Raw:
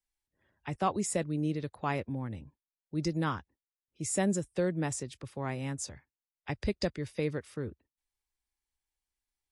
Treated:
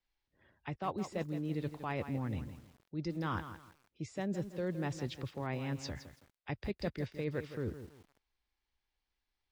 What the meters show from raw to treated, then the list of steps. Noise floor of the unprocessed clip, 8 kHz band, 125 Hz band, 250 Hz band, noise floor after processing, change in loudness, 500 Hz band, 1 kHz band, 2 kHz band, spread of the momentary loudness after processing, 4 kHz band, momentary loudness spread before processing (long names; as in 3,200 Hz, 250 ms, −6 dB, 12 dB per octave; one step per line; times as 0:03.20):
below −85 dBFS, −18.0 dB, −3.0 dB, −5.0 dB, below −85 dBFS, −5.5 dB, −5.0 dB, −5.5 dB, −4.0 dB, 12 LU, −5.0 dB, 11 LU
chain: reversed playback
downward compressor 6 to 1, threshold −40 dBFS, peak gain reduction 15.5 dB
reversed playback
low-pass filter 4,800 Hz 24 dB per octave
feedback echo at a low word length 164 ms, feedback 35%, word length 10 bits, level −10.5 dB
level +5.5 dB